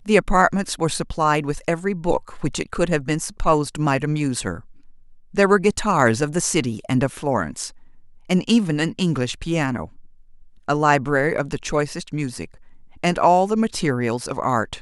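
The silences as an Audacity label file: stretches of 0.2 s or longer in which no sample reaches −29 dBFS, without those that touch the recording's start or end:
4.600000	5.350000	silence
7.680000	8.300000	silence
9.850000	10.680000	silence
12.450000	13.040000	silence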